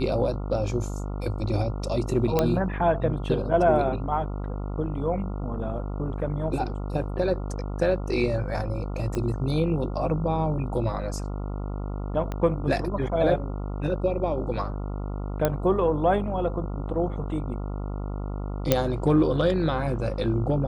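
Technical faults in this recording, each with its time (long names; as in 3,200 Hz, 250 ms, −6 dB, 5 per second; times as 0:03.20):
mains buzz 50 Hz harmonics 28 −31 dBFS
0:02.39: click −8 dBFS
0:09.15: click −17 dBFS
0:12.32: click −18 dBFS
0:15.45: click −9 dBFS
0:18.72: click −4 dBFS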